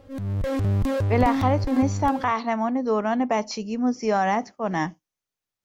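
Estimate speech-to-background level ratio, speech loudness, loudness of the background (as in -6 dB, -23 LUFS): 1.5 dB, -24.5 LUFS, -26.0 LUFS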